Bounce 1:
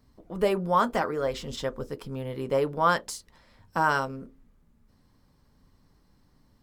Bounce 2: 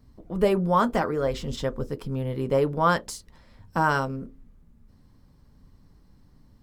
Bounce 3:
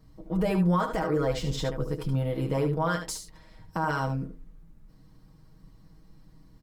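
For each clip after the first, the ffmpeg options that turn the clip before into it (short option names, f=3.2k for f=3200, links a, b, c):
-af "lowshelf=f=310:g=8.5"
-af "aecho=1:1:6.3:0.83,alimiter=limit=-17dB:level=0:latency=1:release=92,aecho=1:1:74:0.376,volume=-1dB"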